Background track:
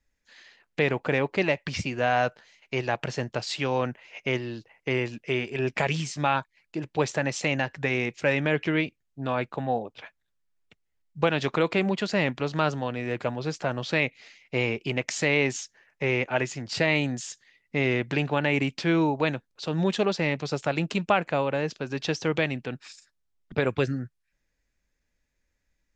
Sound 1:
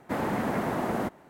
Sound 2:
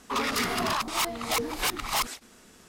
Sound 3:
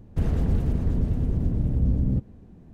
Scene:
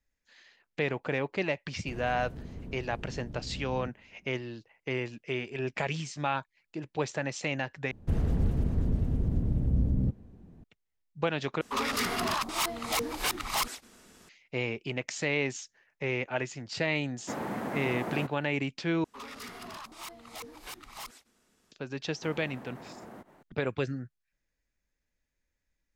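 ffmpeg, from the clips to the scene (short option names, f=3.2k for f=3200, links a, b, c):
-filter_complex "[3:a]asplit=2[a][b];[2:a]asplit=2[c][d];[1:a]asplit=2[e][f];[0:a]volume=-6dB[g];[a]lowshelf=f=150:g=-9[h];[e]highpass=97[i];[f]acompressor=threshold=-40dB:ratio=6:attack=3.2:release=140:knee=1:detection=peak[j];[g]asplit=4[k][l][m][n];[k]atrim=end=7.914[o];[b]atrim=end=2.73,asetpts=PTS-STARTPTS,volume=-4dB[p];[l]atrim=start=10.636:end=11.614[q];[c]atrim=end=2.68,asetpts=PTS-STARTPTS,volume=-2.5dB[r];[m]atrim=start=14.286:end=19.044[s];[d]atrim=end=2.68,asetpts=PTS-STARTPTS,volume=-16dB[t];[n]atrim=start=21.716[u];[h]atrim=end=2.73,asetpts=PTS-STARTPTS,volume=-12.5dB,afade=t=in:d=0.004:c=hsin,afade=t=out:st=2.726:d=0.004:c=hsin,adelay=1700[v];[i]atrim=end=1.29,asetpts=PTS-STARTPTS,volume=-6dB,afade=t=in:d=0.004:c=hsin,afade=t=out:st=1.286:d=0.004:c=hsin,adelay=17180[w];[j]atrim=end=1.29,asetpts=PTS-STARTPTS,volume=-4.5dB,afade=t=in:d=0.004:c=hsin,afade=t=out:st=1.286:d=0.004:c=hsin,adelay=22140[x];[o][p]acrossfade=d=0.004:c1=hsin:c2=hsin[y];[y][q]acrossfade=d=0.004:c1=hsin:c2=hsin[z];[z][r]acrossfade=d=0.004:c1=hsin:c2=hsin[aa];[aa][s]acrossfade=d=0.004:c1=hsin:c2=hsin[ab];[ab][t]acrossfade=d=0.004:c1=hsin:c2=hsin[ac];[ac][u]acrossfade=d=0.004:c1=hsin:c2=hsin[ad];[ad][v][w][x]amix=inputs=4:normalize=0"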